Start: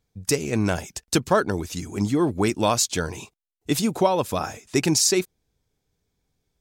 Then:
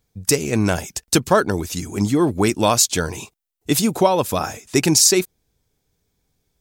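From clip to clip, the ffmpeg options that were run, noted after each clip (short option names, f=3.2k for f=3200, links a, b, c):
-af "highshelf=f=9.1k:g=7.5,volume=4dB"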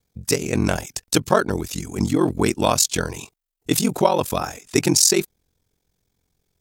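-af "aeval=exprs='val(0)*sin(2*PI*22*n/s)':c=same,volume=1dB"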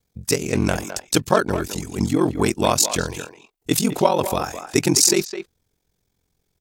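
-filter_complex "[0:a]asplit=2[a][b];[b]adelay=210,highpass=300,lowpass=3.4k,asoftclip=type=hard:threshold=-11dB,volume=-9dB[c];[a][c]amix=inputs=2:normalize=0"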